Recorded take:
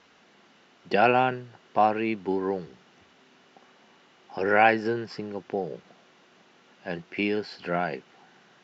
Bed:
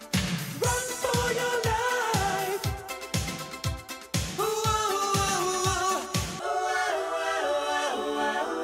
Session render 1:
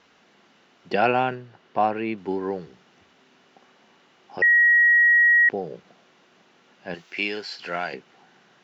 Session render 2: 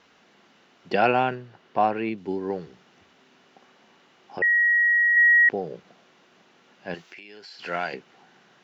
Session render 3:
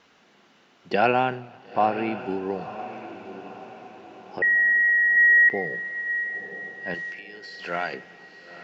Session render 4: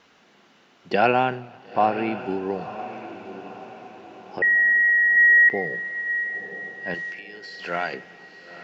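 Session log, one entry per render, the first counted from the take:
1.35–2.18 air absorption 77 m; 4.42–5.49 bleep 1900 Hz -13 dBFS; 6.94–7.94 tilt +3.5 dB/oct
2.09–2.5 bell 1200 Hz -7.5 dB 2.1 oct; 4.39–5.17 air absorption 380 m; 7.06–7.6 compressor 20:1, threshold -40 dBFS
diffused feedback echo 0.961 s, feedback 46%, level -12 dB; warbling echo 90 ms, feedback 71%, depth 130 cents, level -24 dB
gain +1.5 dB

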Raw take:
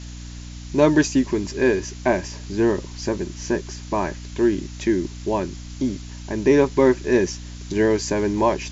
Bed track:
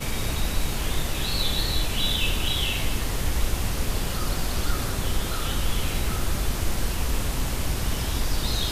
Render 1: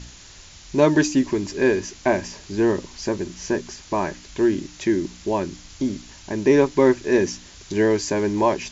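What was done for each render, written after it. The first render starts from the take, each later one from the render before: de-hum 60 Hz, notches 5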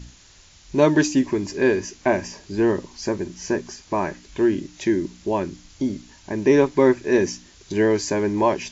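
noise print and reduce 6 dB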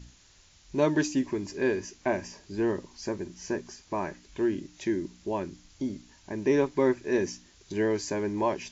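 gain -8 dB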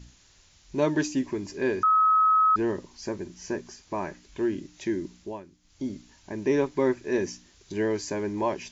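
1.83–2.56 bleep 1280 Hz -17 dBFS; 5.17–5.86 dip -13.5 dB, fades 0.26 s

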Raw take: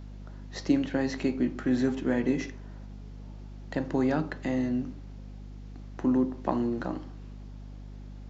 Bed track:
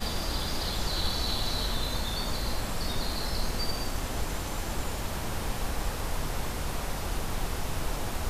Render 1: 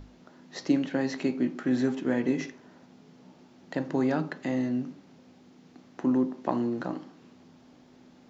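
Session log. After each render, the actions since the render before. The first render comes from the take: notches 50/100/150/200 Hz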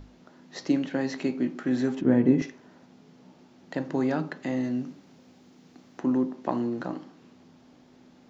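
2.01–2.42 tilt -3.5 dB/oct; 4.64–6 high shelf 5000 Hz +6 dB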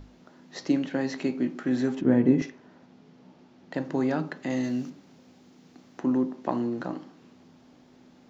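2.49–3.74 air absorption 76 m; 4.5–4.9 high shelf 3000 Hz +10.5 dB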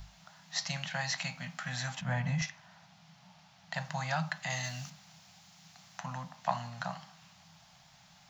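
Chebyshev band-stop 170–700 Hz, order 3; high shelf 2500 Hz +10 dB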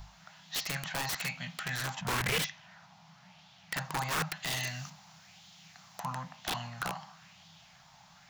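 wrapped overs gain 28 dB; LFO bell 1 Hz 900–3500 Hz +8 dB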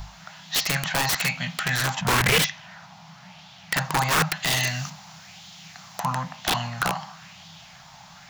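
gain +11 dB

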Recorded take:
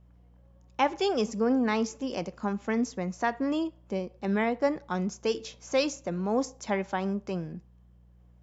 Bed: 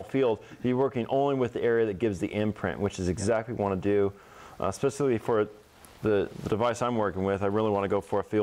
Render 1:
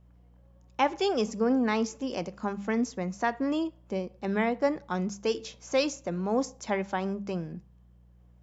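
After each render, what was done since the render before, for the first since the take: de-hum 50 Hz, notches 4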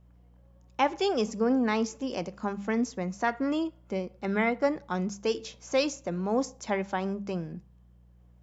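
3.27–4.65 small resonant body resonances 1400/2100 Hz, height 11 dB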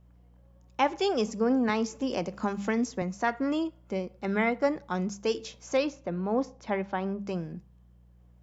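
1.69–3.02 three-band squash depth 70%; 5.77–7.19 air absorption 190 m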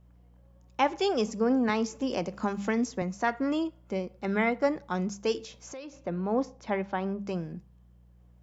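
5.39–6.01 compressor 5:1, threshold -40 dBFS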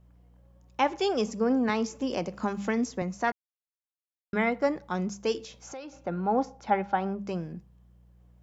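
3.32–4.33 mute; 5.62–7.15 small resonant body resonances 810/1400 Hz, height 12 dB, ringing for 40 ms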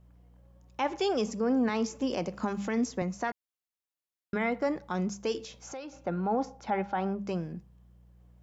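limiter -20 dBFS, peak gain reduction 7 dB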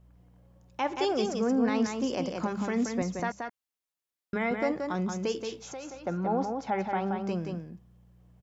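echo 0.177 s -5 dB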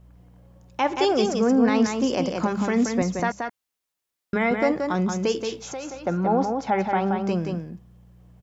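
gain +7 dB

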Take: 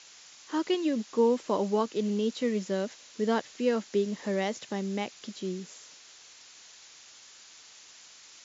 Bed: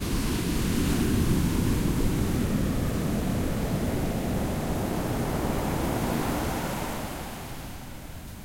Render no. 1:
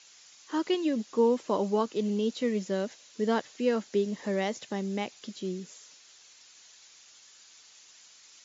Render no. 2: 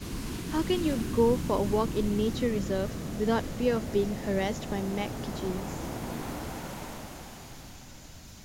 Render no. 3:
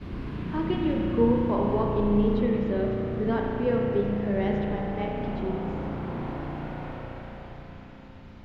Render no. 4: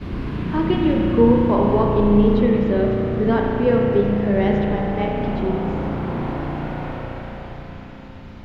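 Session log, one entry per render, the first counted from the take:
denoiser 6 dB, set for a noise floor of -53 dBFS
add bed -8.5 dB
air absorption 390 m; spring tank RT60 2.7 s, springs 34 ms, chirp 70 ms, DRR -1 dB
gain +8 dB; limiter -2 dBFS, peak gain reduction 1 dB

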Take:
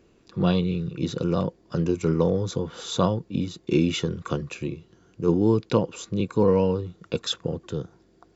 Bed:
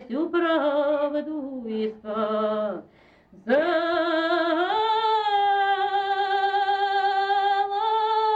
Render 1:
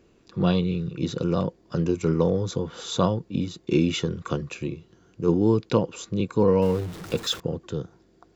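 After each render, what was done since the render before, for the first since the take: 6.62–7.4 zero-crossing step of -34.5 dBFS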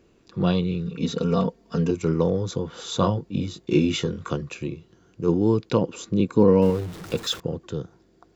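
0.85–1.91 comb 4.4 ms, depth 89%; 2.97–4.3 doubler 20 ms -5.5 dB; 5.81–6.7 bell 260 Hz +6.5 dB 1.3 oct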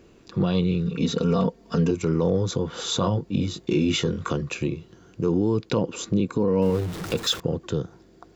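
in parallel at 0 dB: compressor, threshold -30 dBFS, peak gain reduction 17.5 dB; on the sum: limiter -12.5 dBFS, peak gain reduction 8.5 dB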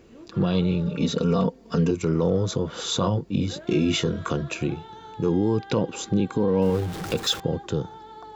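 add bed -21 dB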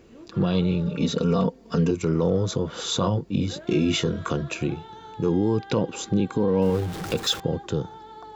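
nothing audible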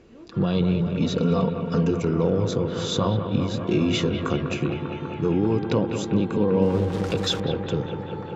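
air absorption 58 m; analogue delay 0.198 s, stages 4096, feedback 83%, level -9 dB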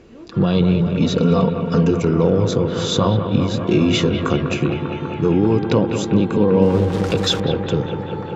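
gain +6 dB

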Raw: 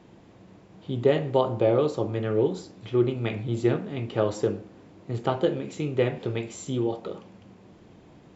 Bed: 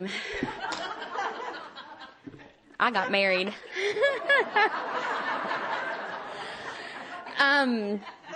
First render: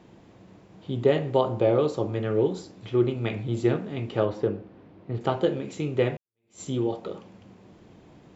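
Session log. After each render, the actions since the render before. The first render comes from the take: 4.25–5.21 air absorption 240 m; 6.17–6.61 fade in exponential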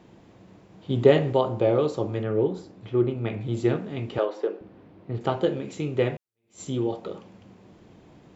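0.9–1.33 gain +4.5 dB; 2.23–3.41 high shelf 3100 Hz -11 dB; 4.18–4.61 HPF 350 Hz 24 dB/oct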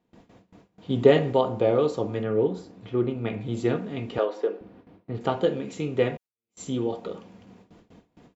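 comb 4.2 ms, depth 31%; gate with hold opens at -41 dBFS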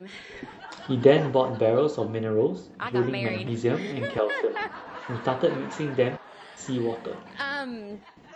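add bed -8.5 dB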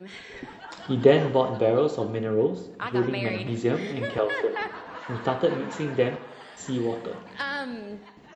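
feedback echo 78 ms, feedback 60%, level -15.5 dB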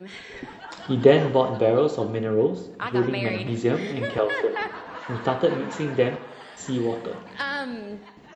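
gain +2 dB

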